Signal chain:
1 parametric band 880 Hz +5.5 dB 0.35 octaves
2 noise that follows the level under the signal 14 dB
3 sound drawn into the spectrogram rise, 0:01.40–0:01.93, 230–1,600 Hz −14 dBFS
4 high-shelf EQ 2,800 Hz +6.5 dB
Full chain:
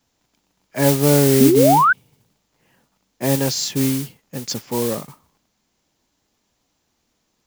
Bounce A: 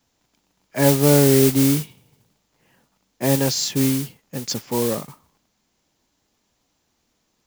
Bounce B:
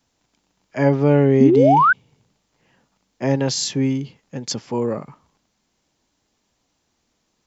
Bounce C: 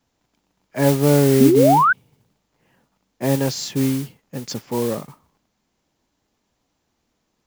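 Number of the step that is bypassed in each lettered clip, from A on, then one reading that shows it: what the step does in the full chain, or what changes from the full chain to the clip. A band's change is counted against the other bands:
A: 3, 1 kHz band −11.0 dB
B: 2, 8 kHz band −6.0 dB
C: 4, 8 kHz band −5.5 dB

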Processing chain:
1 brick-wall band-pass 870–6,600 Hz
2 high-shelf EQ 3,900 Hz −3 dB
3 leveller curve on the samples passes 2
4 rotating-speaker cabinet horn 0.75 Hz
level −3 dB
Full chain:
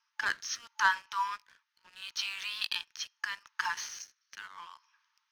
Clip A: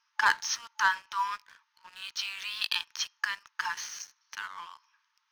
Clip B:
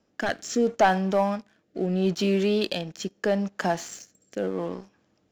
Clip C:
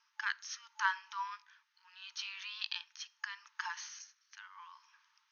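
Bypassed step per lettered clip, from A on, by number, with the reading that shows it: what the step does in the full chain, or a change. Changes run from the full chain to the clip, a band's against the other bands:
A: 4, change in crest factor −2.5 dB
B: 1, 500 Hz band +35.5 dB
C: 3, change in crest factor +3.5 dB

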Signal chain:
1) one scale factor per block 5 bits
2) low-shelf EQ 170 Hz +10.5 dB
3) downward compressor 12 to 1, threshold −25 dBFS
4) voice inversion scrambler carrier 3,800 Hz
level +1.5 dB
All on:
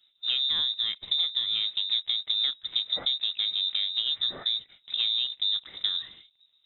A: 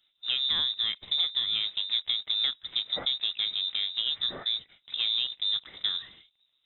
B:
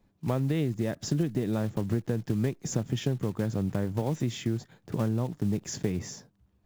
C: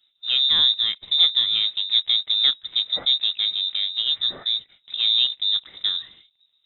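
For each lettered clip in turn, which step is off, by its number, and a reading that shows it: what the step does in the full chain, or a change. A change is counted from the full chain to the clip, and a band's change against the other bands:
2, 4 kHz band −3.5 dB
4, 4 kHz band −31.5 dB
3, average gain reduction 5.0 dB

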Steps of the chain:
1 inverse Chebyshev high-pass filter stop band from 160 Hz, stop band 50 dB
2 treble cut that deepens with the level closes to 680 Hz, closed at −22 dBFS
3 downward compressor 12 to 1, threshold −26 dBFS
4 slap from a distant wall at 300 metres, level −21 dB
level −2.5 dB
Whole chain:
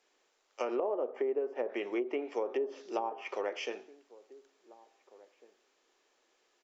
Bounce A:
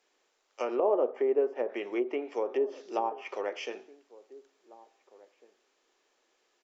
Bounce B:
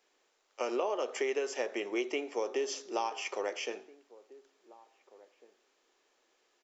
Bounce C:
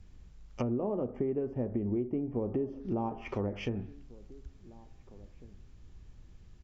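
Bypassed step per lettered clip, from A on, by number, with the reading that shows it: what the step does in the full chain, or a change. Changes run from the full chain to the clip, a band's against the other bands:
3, average gain reduction 2.5 dB
2, 4 kHz band +6.0 dB
1, 250 Hz band +12.0 dB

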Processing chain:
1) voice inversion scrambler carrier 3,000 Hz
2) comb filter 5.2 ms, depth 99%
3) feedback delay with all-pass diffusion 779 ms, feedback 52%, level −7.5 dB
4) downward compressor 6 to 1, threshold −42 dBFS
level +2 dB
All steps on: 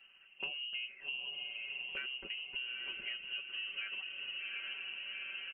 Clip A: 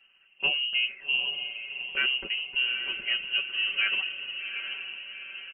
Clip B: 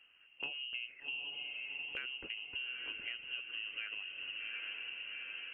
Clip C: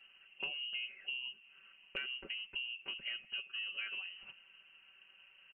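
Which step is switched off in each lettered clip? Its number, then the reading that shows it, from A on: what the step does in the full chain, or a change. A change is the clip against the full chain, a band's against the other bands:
4, average gain reduction 9.0 dB
2, change in crest factor +2.0 dB
3, change in momentary loudness spread +18 LU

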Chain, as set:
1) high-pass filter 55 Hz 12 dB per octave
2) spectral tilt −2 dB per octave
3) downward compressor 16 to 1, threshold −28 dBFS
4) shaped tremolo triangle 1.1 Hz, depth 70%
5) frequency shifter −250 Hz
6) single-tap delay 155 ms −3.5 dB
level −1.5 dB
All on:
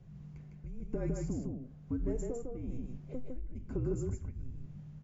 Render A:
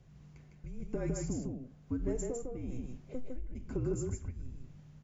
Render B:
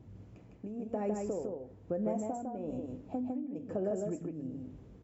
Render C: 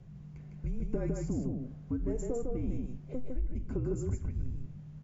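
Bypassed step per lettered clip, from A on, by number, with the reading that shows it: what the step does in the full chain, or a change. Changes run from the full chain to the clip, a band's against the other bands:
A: 2, 2 kHz band +3.5 dB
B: 5, 1 kHz band +12.0 dB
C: 4, change in momentary loudness spread −4 LU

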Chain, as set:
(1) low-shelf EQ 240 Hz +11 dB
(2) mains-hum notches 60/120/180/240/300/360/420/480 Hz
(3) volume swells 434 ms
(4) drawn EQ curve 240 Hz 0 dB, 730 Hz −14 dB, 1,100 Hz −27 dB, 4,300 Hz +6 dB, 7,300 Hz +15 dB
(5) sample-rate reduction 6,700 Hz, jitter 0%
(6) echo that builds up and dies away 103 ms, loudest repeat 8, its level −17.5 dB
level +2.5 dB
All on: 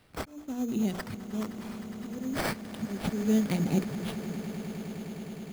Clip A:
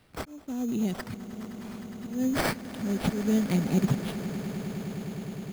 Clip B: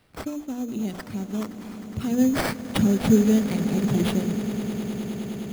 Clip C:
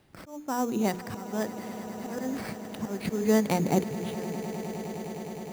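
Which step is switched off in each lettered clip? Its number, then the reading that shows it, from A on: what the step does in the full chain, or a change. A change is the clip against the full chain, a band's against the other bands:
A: 2, change in momentary loudness spread +1 LU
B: 3, 2 kHz band −2.0 dB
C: 4, 1 kHz band +7.0 dB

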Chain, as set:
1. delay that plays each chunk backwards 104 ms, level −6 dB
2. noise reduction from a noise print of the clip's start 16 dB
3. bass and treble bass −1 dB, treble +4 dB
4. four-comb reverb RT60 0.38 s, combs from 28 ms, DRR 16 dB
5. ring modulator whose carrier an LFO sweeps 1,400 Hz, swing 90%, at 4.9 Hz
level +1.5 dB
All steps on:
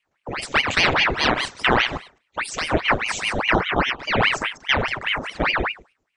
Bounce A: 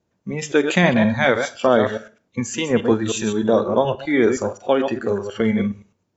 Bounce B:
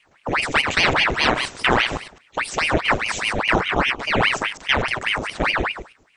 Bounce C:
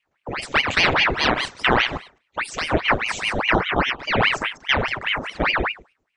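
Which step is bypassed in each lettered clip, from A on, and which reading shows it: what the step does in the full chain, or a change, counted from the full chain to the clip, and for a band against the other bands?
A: 5, change in crest factor −2.0 dB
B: 2, change in momentary loudness spread −3 LU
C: 3, 8 kHz band −3.0 dB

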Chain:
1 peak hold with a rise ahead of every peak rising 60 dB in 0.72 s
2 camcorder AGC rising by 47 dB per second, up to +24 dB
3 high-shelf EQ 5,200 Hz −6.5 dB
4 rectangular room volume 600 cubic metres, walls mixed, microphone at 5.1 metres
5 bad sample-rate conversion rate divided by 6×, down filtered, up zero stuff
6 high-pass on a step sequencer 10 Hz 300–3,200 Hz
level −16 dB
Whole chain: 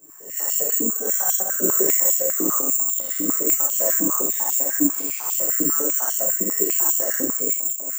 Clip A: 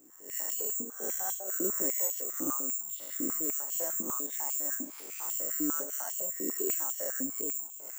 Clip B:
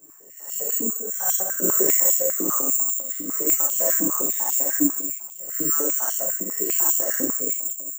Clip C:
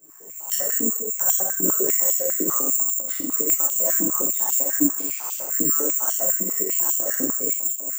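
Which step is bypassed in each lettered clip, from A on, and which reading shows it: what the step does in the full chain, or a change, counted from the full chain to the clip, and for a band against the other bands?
4, 125 Hz band −3.0 dB
2, change in crest factor +1.5 dB
1, 125 Hz band +2.0 dB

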